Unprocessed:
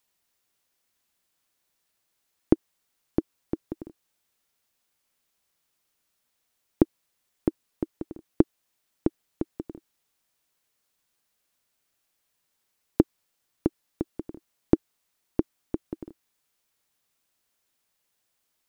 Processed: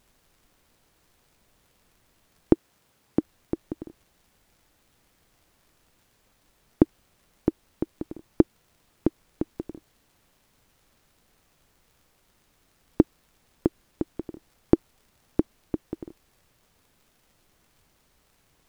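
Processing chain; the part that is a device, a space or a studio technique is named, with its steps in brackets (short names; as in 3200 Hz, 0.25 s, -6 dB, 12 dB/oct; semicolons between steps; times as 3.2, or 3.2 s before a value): vinyl LP (wow and flutter; crackle; pink noise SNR 33 dB); 2.53–3.19 HPF 87 Hz; gain +1.5 dB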